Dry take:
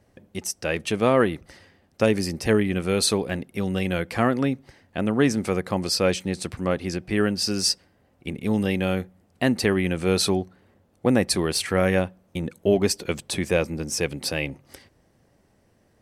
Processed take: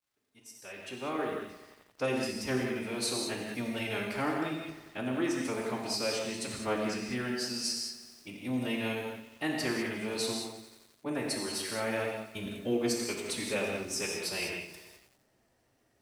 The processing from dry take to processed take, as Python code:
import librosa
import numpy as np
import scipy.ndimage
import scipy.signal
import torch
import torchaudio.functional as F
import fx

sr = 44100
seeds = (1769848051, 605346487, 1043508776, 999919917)

y = fx.fade_in_head(x, sr, length_s=3.3)
y = fx.low_shelf(y, sr, hz=490.0, db=-8.0)
y = fx.rider(y, sr, range_db=4, speed_s=0.5)
y = fx.dmg_crackle(y, sr, seeds[0], per_s=360.0, level_db=-60.0)
y = fx.pitch_keep_formants(y, sr, semitones=3.0)
y = fx.rev_gated(y, sr, seeds[1], gate_ms=230, shape='flat', drr_db=-0.5)
y = fx.echo_crushed(y, sr, ms=88, feedback_pct=80, bits=7, wet_db=-15)
y = y * 10.0 ** (-8.5 / 20.0)